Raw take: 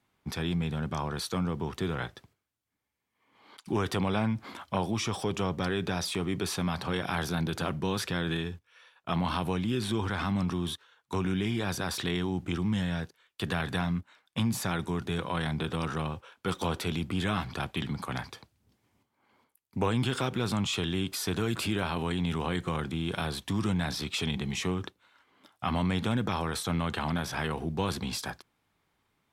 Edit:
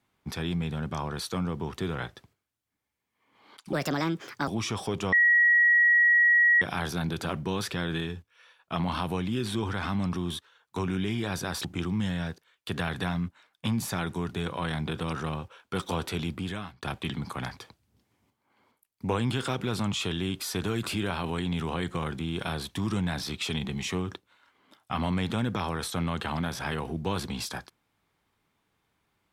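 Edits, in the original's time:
3.73–4.84 s: speed 149%
5.49–6.98 s: bleep 1.91 kHz -17 dBFS
12.01–12.37 s: delete
17.02–17.55 s: fade out

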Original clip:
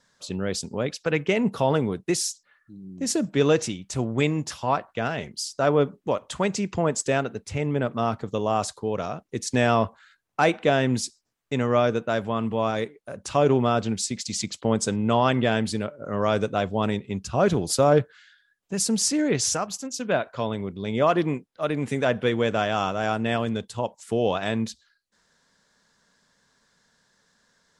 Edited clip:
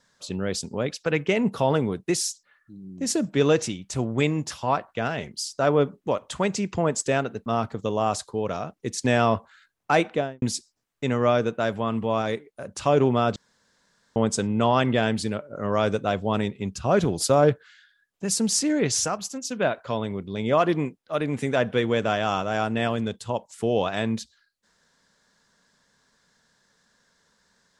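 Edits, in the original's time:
7.46–7.95 s: delete
10.53–10.91 s: studio fade out
13.85–14.65 s: room tone

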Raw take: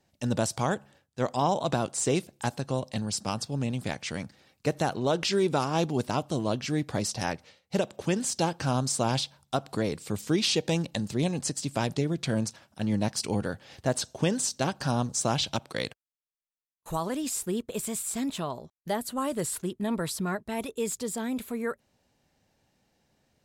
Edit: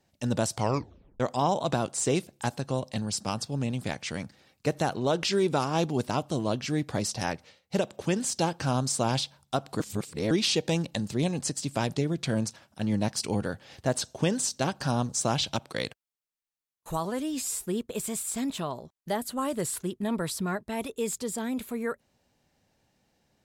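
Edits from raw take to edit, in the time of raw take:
0.56 s: tape stop 0.64 s
9.80–10.31 s: reverse
17.05–17.46 s: stretch 1.5×

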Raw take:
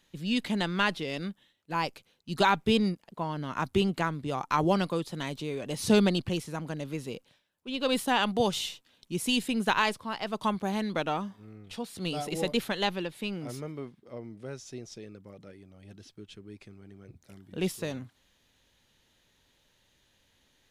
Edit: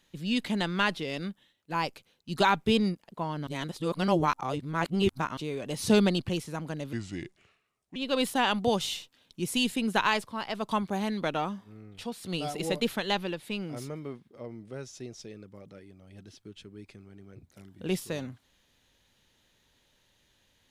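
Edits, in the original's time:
3.47–5.37 s: reverse
6.93–7.68 s: speed 73%

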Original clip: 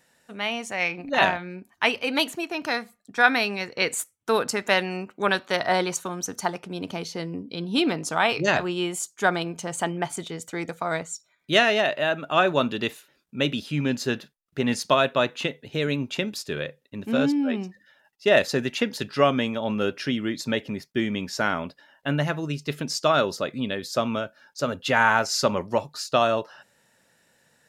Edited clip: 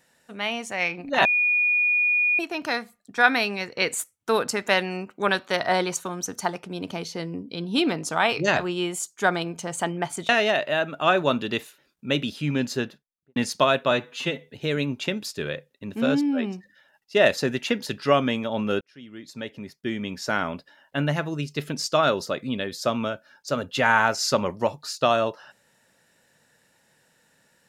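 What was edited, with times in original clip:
1.25–2.39 s: bleep 2.45 kHz -18 dBFS
10.29–11.59 s: delete
13.97–14.66 s: studio fade out
15.21–15.59 s: stretch 1.5×
19.92–21.60 s: fade in

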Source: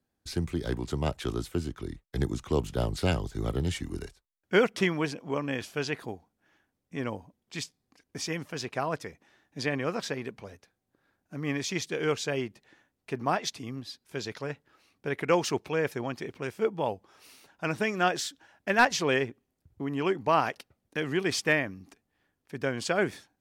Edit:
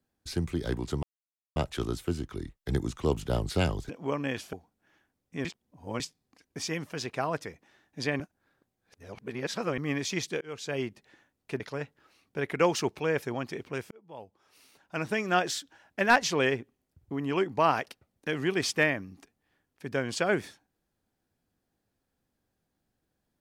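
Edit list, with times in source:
1.03 s: insert silence 0.53 s
3.36–5.13 s: delete
5.77–6.12 s: delete
7.04–7.59 s: reverse
9.79–11.37 s: reverse
12.00–12.42 s: fade in
13.19–14.29 s: delete
16.60–18.00 s: fade in

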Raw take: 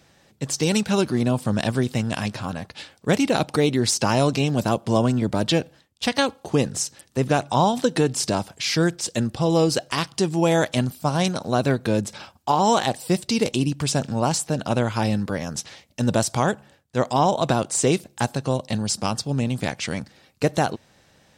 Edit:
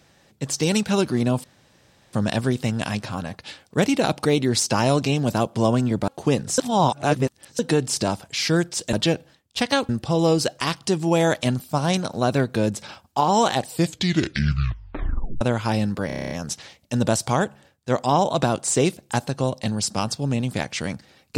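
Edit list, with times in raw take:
1.44 s: insert room tone 0.69 s
5.39–6.35 s: move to 9.20 s
6.85–7.86 s: reverse
13.01 s: tape stop 1.71 s
15.38 s: stutter 0.03 s, 9 plays

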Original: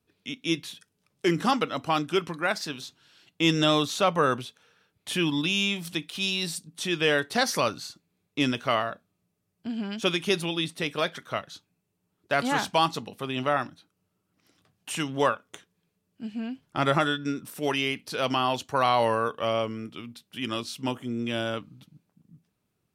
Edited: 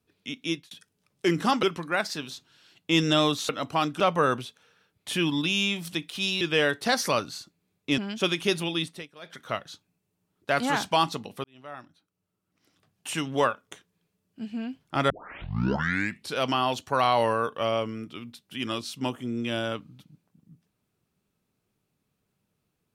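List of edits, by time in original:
0.44–0.71 s: fade out
1.63–2.14 s: move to 4.00 s
6.41–6.90 s: delete
8.47–9.80 s: delete
10.65–11.27 s: dip -20.5 dB, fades 0.24 s
13.26–14.99 s: fade in
16.92 s: tape start 1.25 s

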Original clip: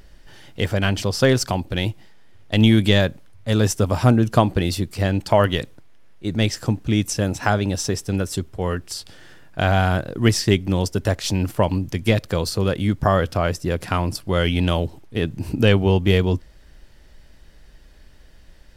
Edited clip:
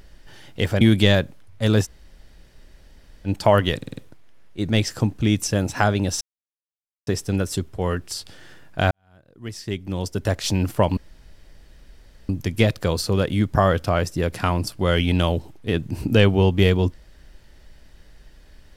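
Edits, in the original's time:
0.81–2.67 s: delete
3.70–5.13 s: room tone, crossfade 0.06 s
5.63 s: stutter 0.05 s, 5 plays
7.87 s: insert silence 0.86 s
9.71–11.23 s: fade in quadratic
11.77 s: insert room tone 1.32 s

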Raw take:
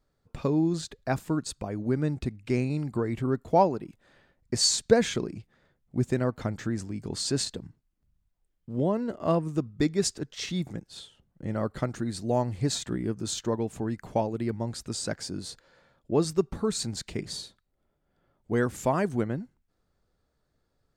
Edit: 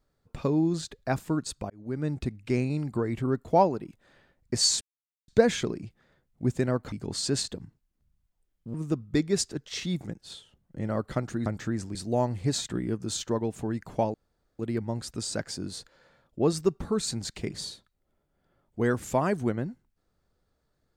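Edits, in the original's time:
1.70–2.16 s: fade in
4.81 s: insert silence 0.47 s
6.45–6.94 s: move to 12.12 s
8.76–9.40 s: delete
14.31 s: insert room tone 0.45 s

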